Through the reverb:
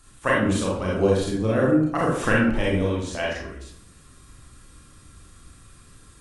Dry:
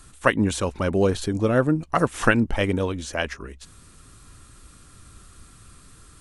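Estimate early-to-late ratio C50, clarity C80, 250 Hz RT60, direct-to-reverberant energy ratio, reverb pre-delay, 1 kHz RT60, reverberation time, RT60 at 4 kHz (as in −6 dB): 1.0 dB, 5.5 dB, 0.90 s, −5.5 dB, 30 ms, 0.65 s, 0.70 s, 0.45 s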